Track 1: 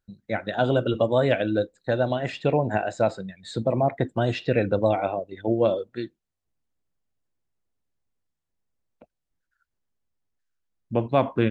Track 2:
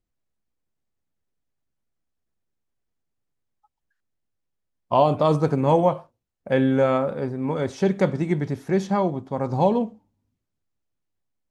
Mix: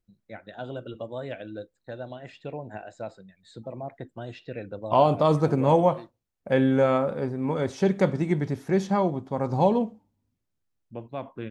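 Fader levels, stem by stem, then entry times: -14.0, -1.5 dB; 0.00, 0.00 s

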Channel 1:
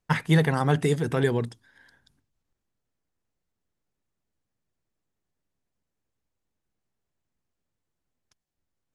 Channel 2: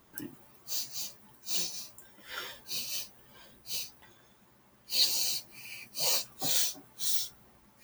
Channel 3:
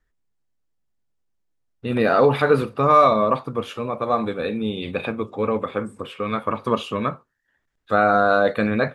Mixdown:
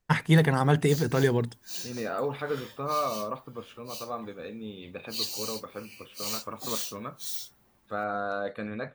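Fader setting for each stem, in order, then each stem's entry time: 0.0, -5.5, -14.5 dB; 0.00, 0.20, 0.00 s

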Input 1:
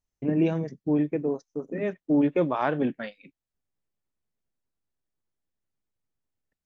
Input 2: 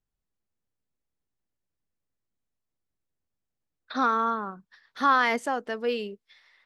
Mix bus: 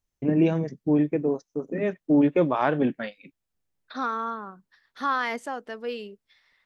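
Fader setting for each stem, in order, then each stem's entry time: +2.5, -4.5 dB; 0.00, 0.00 s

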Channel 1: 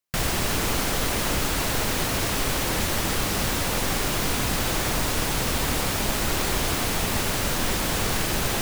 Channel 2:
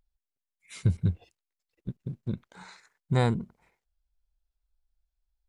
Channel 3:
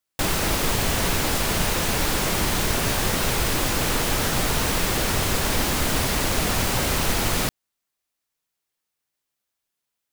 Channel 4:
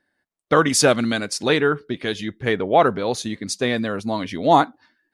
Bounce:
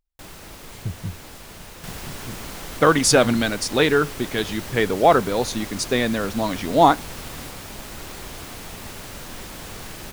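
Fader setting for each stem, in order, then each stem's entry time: -11.5, -5.0, -18.0, +0.5 dB; 1.70, 0.00, 0.00, 2.30 s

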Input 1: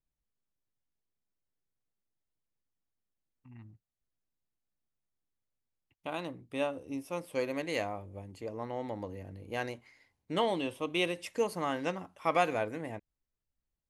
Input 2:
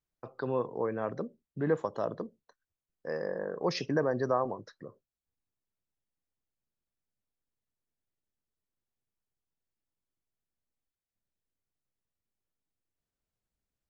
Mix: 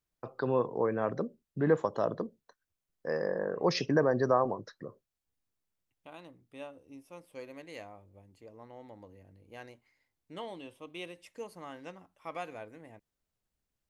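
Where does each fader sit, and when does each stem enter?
-12.0, +2.5 dB; 0.00, 0.00 s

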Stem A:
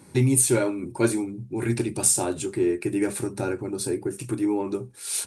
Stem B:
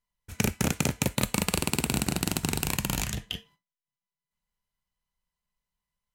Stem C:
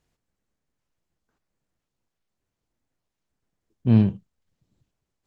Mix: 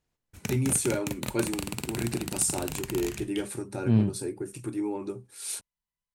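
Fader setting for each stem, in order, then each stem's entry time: -6.5, -7.5, -5.5 dB; 0.35, 0.05, 0.00 s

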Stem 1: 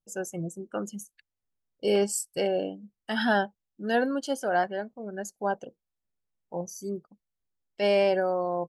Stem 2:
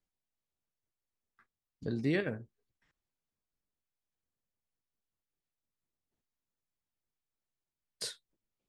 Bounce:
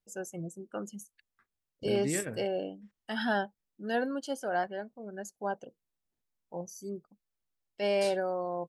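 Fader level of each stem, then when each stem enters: -5.5, -2.5 dB; 0.00, 0.00 s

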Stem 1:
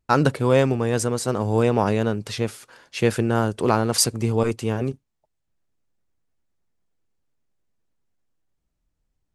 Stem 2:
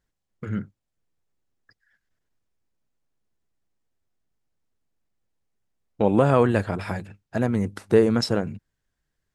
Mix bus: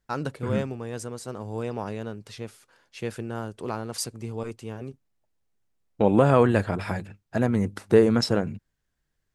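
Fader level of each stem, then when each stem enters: -12.0, 0.0 dB; 0.00, 0.00 s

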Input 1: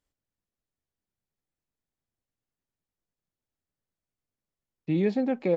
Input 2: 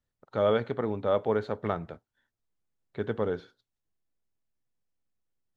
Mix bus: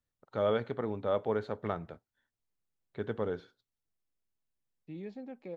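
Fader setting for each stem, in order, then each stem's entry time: -18.0, -4.5 dB; 0.00, 0.00 s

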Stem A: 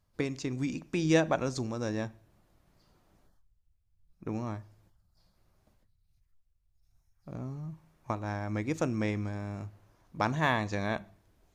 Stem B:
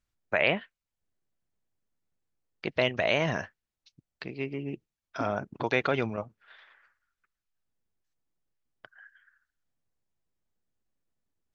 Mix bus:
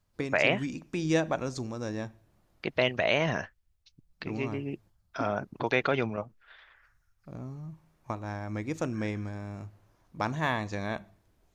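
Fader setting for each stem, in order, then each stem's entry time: -1.5, 0.0 dB; 0.00, 0.00 s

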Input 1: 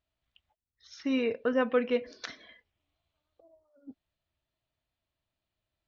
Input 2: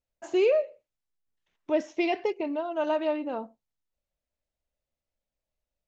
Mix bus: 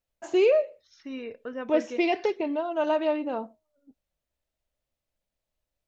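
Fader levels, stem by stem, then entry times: -8.5, +2.0 dB; 0.00, 0.00 s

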